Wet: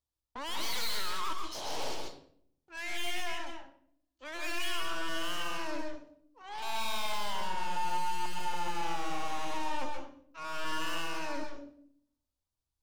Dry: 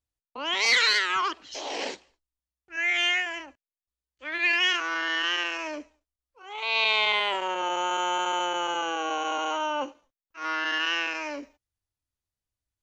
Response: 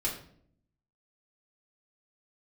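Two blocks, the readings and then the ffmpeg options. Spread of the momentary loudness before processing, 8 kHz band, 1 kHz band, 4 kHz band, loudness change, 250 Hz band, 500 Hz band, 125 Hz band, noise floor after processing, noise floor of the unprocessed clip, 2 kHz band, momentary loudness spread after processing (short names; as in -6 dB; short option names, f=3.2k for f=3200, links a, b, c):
15 LU, -5.0 dB, -6.5 dB, -11.0 dB, -11.0 dB, -4.5 dB, -8.5 dB, n/a, under -85 dBFS, under -85 dBFS, -14.0 dB, 12 LU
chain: -filter_complex "[0:a]equalizer=f=1k:t=o:w=1:g=6,equalizer=f=2k:t=o:w=1:g=-10,equalizer=f=4k:t=o:w=1:g=4,aeval=exprs='(tanh(70.8*val(0)+0.7)-tanh(0.7))/70.8':c=same,asplit=2[a][b];[1:a]atrim=start_sample=2205,adelay=126[c];[b][c]afir=irnorm=-1:irlink=0,volume=-7dB[d];[a][d]amix=inputs=2:normalize=0"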